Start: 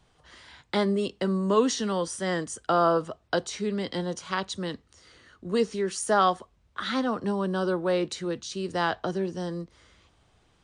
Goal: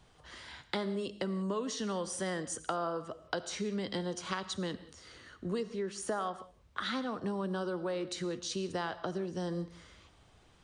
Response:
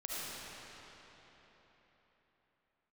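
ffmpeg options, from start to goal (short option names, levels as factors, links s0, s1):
-filter_complex "[0:a]asettb=1/sr,asplit=3[s0][s1][s2];[s0]atrim=end=5.634[s3];[s1]atrim=start=5.63:end=6.34,asetpts=PTS-STARTPTS,afade=t=in:d=0.004:c=qsin,afade=t=out:st=0.706:d=0.004:c=qsin,lowpass=f=2900:p=1[s4];[s2]atrim=start=6.336[s5];[s3][s4]acrossfade=d=0.004:c1=hsin:c2=qsin[s6];[s6][s5]acrossfade=d=0.004:c1=qsin:c2=hsin,acompressor=threshold=0.02:ratio=6,asplit=2[s7][s8];[1:a]atrim=start_sample=2205,afade=t=out:st=0.25:d=0.01,atrim=end_sample=11466[s9];[s8][s9]afir=irnorm=-1:irlink=0,volume=0.266[s10];[s7][s10]amix=inputs=2:normalize=0"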